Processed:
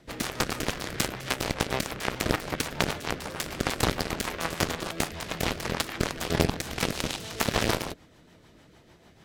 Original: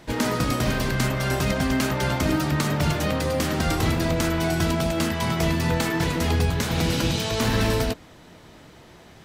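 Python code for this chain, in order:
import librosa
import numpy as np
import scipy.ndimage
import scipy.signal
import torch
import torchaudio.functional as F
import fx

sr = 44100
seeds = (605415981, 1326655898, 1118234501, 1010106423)

y = fx.cheby_harmonics(x, sr, harmonics=(3,), levels_db=(-8,), full_scale_db=-10.0)
y = fx.rotary(y, sr, hz=6.7)
y = y * 10.0 ** (8.5 / 20.0)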